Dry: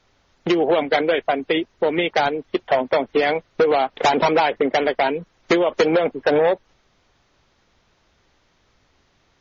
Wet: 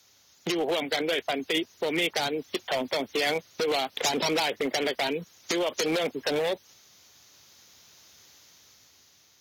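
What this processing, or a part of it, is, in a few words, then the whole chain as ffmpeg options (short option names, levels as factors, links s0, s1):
FM broadcast chain: -filter_complex "[0:a]highpass=f=76:w=0.5412,highpass=f=76:w=1.3066,dynaudnorm=f=330:g=7:m=2,acrossover=split=500|2200[s0][s1][s2];[s0]acompressor=threshold=0.126:ratio=4[s3];[s1]acompressor=threshold=0.0794:ratio=4[s4];[s2]acompressor=threshold=0.0398:ratio=4[s5];[s3][s4][s5]amix=inputs=3:normalize=0,aemphasis=mode=production:type=75fm,alimiter=limit=0.251:level=0:latency=1:release=53,asoftclip=type=hard:threshold=0.178,lowpass=f=15000:w=0.5412,lowpass=f=15000:w=1.3066,aemphasis=mode=production:type=75fm,volume=0.501"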